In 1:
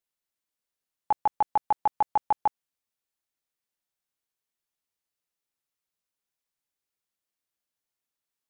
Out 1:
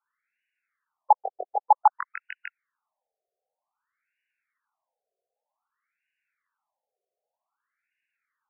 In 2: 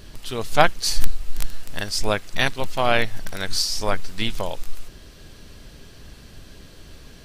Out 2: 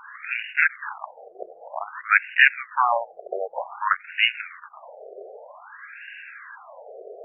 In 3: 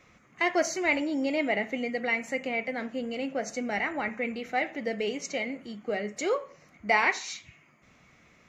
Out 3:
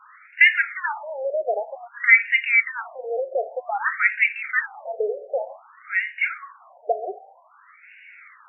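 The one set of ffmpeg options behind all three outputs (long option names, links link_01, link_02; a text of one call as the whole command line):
ffmpeg -i in.wav -filter_complex "[0:a]acrossover=split=250|1200[link_01][link_02][link_03];[link_02]acompressor=threshold=-40dB:ratio=6[link_04];[link_01][link_04][link_03]amix=inputs=3:normalize=0,aeval=exprs='1.26*sin(PI/2*6.31*val(0)/1.26)':channel_layout=same,afftfilt=real='re*between(b*sr/1024,530*pow(2100/530,0.5+0.5*sin(2*PI*0.53*pts/sr))/1.41,530*pow(2100/530,0.5+0.5*sin(2*PI*0.53*pts/sr))*1.41)':imag='im*between(b*sr/1024,530*pow(2100/530,0.5+0.5*sin(2*PI*0.53*pts/sr))/1.41,530*pow(2100/530,0.5+0.5*sin(2*PI*0.53*pts/sr))*1.41)':win_size=1024:overlap=0.75,volume=-3dB" out.wav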